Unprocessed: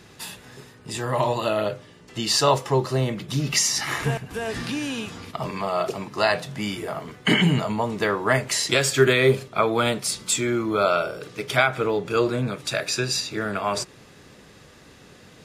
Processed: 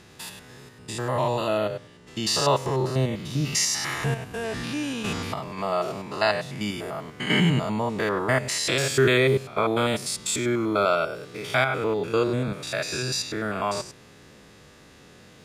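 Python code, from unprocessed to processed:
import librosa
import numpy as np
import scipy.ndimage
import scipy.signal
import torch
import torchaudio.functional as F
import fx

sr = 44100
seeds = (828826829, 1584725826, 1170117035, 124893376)

y = fx.spec_steps(x, sr, hold_ms=100)
y = fx.over_compress(y, sr, threshold_db=-36.0, ratio=-0.5, at=(5.03, 5.57), fade=0.02)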